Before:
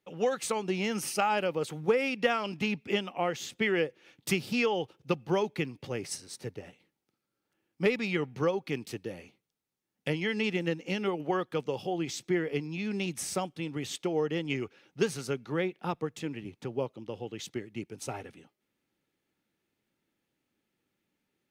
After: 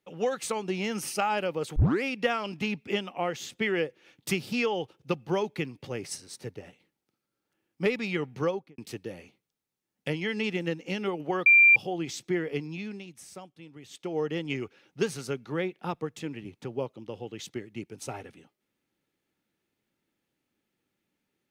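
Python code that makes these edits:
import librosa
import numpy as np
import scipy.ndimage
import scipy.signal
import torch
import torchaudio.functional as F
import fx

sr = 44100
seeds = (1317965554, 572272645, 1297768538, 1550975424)

y = fx.studio_fade_out(x, sr, start_s=8.48, length_s=0.3)
y = fx.edit(y, sr, fx.tape_start(start_s=1.76, length_s=0.27),
    fx.bleep(start_s=11.46, length_s=0.3, hz=2370.0, db=-13.5),
    fx.fade_down_up(start_s=12.71, length_s=1.51, db=-12.5, fade_s=0.33), tone=tone)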